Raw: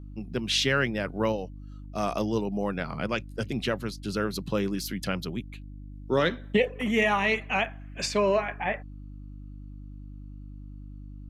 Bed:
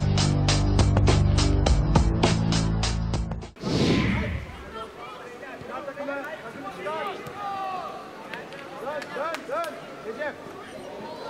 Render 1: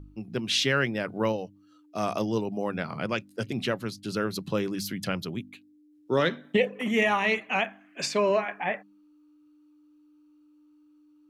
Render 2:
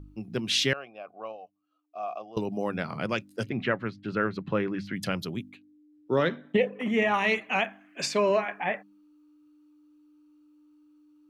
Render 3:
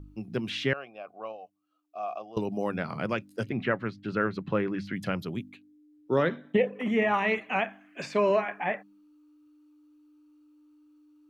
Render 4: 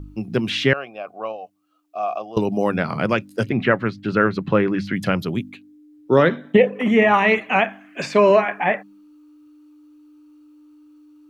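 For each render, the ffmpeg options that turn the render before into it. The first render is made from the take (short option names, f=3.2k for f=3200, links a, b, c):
-af "bandreject=f=50:t=h:w=4,bandreject=f=100:t=h:w=4,bandreject=f=150:t=h:w=4,bandreject=f=200:t=h:w=4,bandreject=f=250:t=h:w=4"
-filter_complex "[0:a]asettb=1/sr,asplit=3[a][b][c];[a]atrim=end=0.734[d];[b]atrim=start=0.73:end=2.37,asetpts=PTS-STARTPTS,afade=t=in:d=0.004:c=qsin,afade=t=out:st=1.636:d=0.004:c=qsin,asplit=3[e][f][g];[e]bandpass=f=730:t=q:w=8,volume=0dB[h];[f]bandpass=f=1.09k:t=q:w=8,volume=-6dB[i];[g]bandpass=f=2.44k:t=q:w=8,volume=-9dB[j];[h][i][j]amix=inputs=3:normalize=0[k];[c]atrim=start=2.366[l];[d][k]acrossfade=d=0.004:c1=hsin:c2=qsin[m];[m][l]acrossfade=d=0.004:c1=qsin:c2=hsin,asettb=1/sr,asplit=3[n][o][p];[n]atrim=end=3.494[q];[o]atrim=start=3.49:end=4.96,asetpts=PTS-STARTPTS,afade=t=in:d=0.004:c=qsin,afade=t=out:st=1.466:d=0.004:c=qsin,lowpass=f=1.9k:t=q:w=1.8[r];[p]atrim=start=4.956[s];[q][r]acrossfade=d=0.004:c1=hsin:c2=qsin[t];[t][s]acrossfade=d=0.004:c1=qsin:c2=hsin,asettb=1/sr,asplit=3[u][v][w];[u]atrim=end=5.524[x];[v]atrim=start=5.52:end=7.14,asetpts=PTS-STARTPTS,afade=t=in:d=0.004:c=qsin,afade=t=out:st=1.616:d=0.004:c=qsin,lowpass=f=2.2k:p=1[y];[w]atrim=start=7.136[z];[x][y]acrossfade=d=0.004:c1=hsin:c2=qsin[aa];[aa][z]acrossfade=d=0.004:c1=qsin:c2=hsin"
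-filter_complex "[0:a]acrossover=split=2600[a][b];[b]acompressor=threshold=-46dB:ratio=4:attack=1:release=60[c];[a][c]amix=inputs=2:normalize=0"
-af "volume=10dB"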